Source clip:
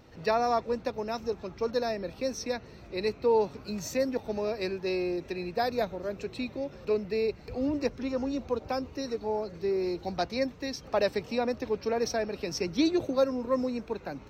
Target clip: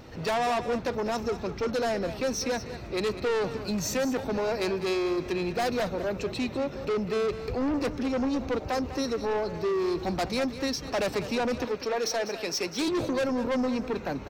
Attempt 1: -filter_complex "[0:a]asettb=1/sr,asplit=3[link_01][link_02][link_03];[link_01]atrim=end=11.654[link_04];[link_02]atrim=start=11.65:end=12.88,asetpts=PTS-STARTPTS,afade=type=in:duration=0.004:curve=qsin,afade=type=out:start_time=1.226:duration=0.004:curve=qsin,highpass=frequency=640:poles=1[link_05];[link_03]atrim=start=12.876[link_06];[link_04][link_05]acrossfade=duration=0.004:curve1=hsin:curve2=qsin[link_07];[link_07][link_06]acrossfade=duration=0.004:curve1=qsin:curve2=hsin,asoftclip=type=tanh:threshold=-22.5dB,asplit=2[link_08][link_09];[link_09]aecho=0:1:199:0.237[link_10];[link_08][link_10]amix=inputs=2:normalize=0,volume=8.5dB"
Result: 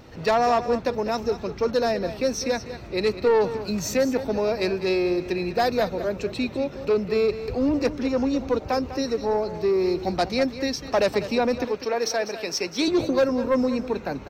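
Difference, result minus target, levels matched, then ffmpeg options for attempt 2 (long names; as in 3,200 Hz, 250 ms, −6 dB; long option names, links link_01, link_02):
soft clipping: distortion −9 dB
-filter_complex "[0:a]asettb=1/sr,asplit=3[link_01][link_02][link_03];[link_01]atrim=end=11.654[link_04];[link_02]atrim=start=11.65:end=12.88,asetpts=PTS-STARTPTS,afade=type=in:duration=0.004:curve=qsin,afade=type=out:start_time=1.226:duration=0.004:curve=qsin,highpass=frequency=640:poles=1[link_05];[link_03]atrim=start=12.876[link_06];[link_04][link_05]acrossfade=duration=0.004:curve1=hsin:curve2=qsin[link_07];[link_07][link_06]acrossfade=duration=0.004:curve1=qsin:curve2=hsin,asoftclip=type=tanh:threshold=-33dB,asplit=2[link_08][link_09];[link_09]aecho=0:1:199:0.237[link_10];[link_08][link_10]amix=inputs=2:normalize=0,volume=8.5dB"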